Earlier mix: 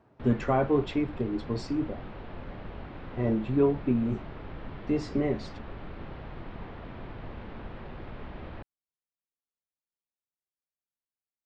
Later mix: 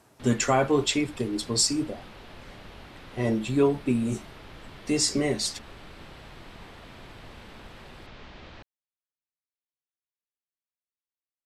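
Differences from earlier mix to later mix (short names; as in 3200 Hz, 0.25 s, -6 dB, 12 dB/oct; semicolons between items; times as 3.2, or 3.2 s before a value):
background -7.0 dB; master: remove tape spacing loss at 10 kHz 43 dB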